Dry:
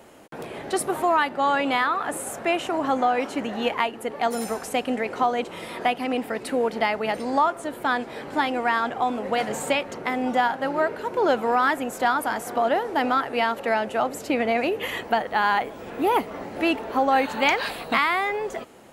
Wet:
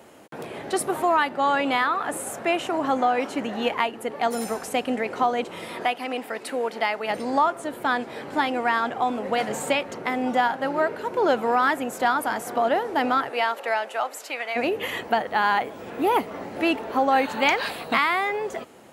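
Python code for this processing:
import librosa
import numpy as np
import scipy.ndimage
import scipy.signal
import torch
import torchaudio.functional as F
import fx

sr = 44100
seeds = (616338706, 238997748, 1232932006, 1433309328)

y = fx.highpass(x, sr, hz=510.0, slope=6, at=(5.85, 7.1))
y = fx.highpass(y, sr, hz=fx.line((13.29, 410.0), (14.55, 1100.0)), slope=12, at=(13.29, 14.55), fade=0.02)
y = scipy.signal.sosfilt(scipy.signal.butter(2, 71.0, 'highpass', fs=sr, output='sos'), y)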